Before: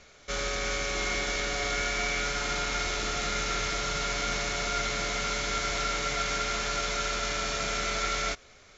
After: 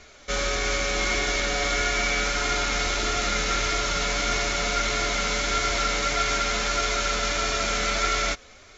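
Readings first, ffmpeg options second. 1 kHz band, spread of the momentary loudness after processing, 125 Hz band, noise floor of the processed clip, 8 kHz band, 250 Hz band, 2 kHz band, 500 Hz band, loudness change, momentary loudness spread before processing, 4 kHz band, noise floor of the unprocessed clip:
+5.0 dB, 1 LU, +4.5 dB, -50 dBFS, no reading, +5.5 dB, +5.0 dB, +5.0 dB, +5.0 dB, 1 LU, +5.0 dB, -55 dBFS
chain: -af "flanger=delay=2.8:depth=1.2:regen=-42:speed=1.6:shape=sinusoidal,volume=2.82"

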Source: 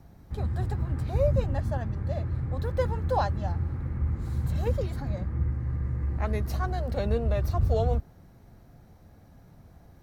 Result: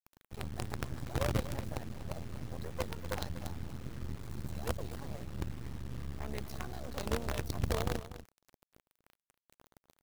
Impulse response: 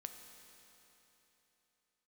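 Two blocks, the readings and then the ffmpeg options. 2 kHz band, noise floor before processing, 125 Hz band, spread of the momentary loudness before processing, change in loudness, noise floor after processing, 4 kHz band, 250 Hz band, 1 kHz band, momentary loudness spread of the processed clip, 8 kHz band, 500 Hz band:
-2.5 dB, -54 dBFS, -12.5 dB, 6 LU, -10.5 dB, under -85 dBFS, +2.0 dB, -6.5 dB, -9.5 dB, 10 LU, no reading, -10.5 dB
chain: -filter_complex "[0:a]lowshelf=f=85:g=-10,acrossover=split=220|440|2000[s0][s1][s2][s3];[s2]acompressor=threshold=0.00794:ratio=10[s4];[s0][s1][s4][s3]amix=inputs=4:normalize=0,acrusher=bits=5:dc=4:mix=0:aa=0.000001,tremolo=f=150:d=0.4,aecho=1:1:242:0.211,volume=0.75"

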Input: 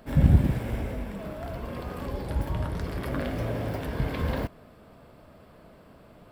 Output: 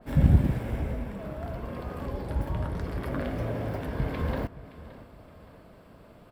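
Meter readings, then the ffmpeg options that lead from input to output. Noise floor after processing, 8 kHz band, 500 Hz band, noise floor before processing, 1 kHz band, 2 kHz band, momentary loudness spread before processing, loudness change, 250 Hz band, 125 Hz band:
-53 dBFS, no reading, -1.0 dB, -53 dBFS, -1.0 dB, -2.0 dB, 15 LU, -1.0 dB, -1.0 dB, -1.0 dB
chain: -filter_complex "[0:a]asplit=2[s0][s1];[s1]adelay=570,lowpass=f=3200:p=1,volume=0.133,asplit=2[s2][s3];[s3]adelay=570,lowpass=f=3200:p=1,volume=0.5,asplit=2[s4][s5];[s5]adelay=570,lowpass=f=3200:p=1,volume=0.5,asplit=2[s6][s7];[s7]adelay=570,lowpass=f=3200:p=1,volume=0.5[s8];[s0][s2][s4][s6][s8]amix=inputs=5:normalize=0,adynamicequalizer=threshold=0.00282:dfrequency=2300:dqfactor=0.7:tfrequency=2300:tqfactor=0.7:attack=5:release=100:ratio=0.375:range=2.5:mode=cutabove:tftype=highshelf,volume=0.891"

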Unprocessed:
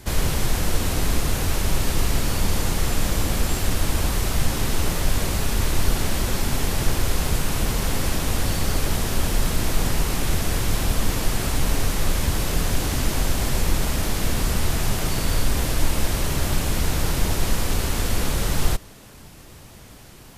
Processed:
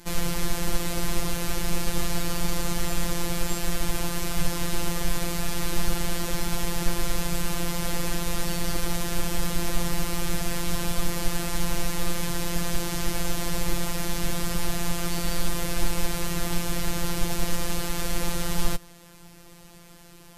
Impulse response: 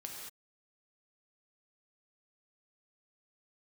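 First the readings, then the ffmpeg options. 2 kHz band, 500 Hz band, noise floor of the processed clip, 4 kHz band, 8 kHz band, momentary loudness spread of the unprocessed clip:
-4.0 dB, -3.5 dB, -48 dBFS, -3.5 dB, -3.5 dB, 1 LU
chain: -af "aeval=exprs='0.531*(cos(1*acos(clip(val(0)/0.531,-1,1)))-cos(1*PI/2))+0.00596*(cos(7*acos(clip(val(0)/0.531,-1,1)))-cos(7*PI/2))':c=same,afftfilt=real='hypot(re,im)*cos(PI*b)':imag='0':win_size=1024:overlap=0.75"

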